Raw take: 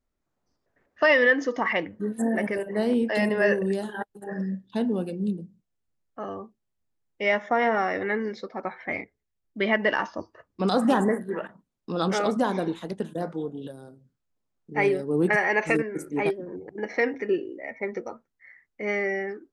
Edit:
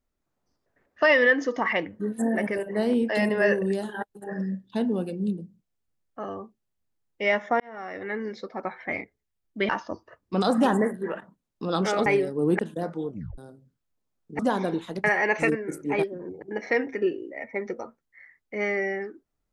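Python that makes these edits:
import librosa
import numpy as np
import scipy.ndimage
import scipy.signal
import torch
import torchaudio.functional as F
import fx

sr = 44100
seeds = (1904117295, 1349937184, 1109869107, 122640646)

y = fx.edit(x, sr, fx.fade_in_span(start_s=7.6, length_s=0.89),
    fx.cut(start_s=9.69, length_s=0.27),
    fx.swap(start_s=12.33, length_s=0.65, other_s=14.78, other_length_s=0.53),
    fx.tape_stop(start_s=13.48, length_s=0.29), tone=tone)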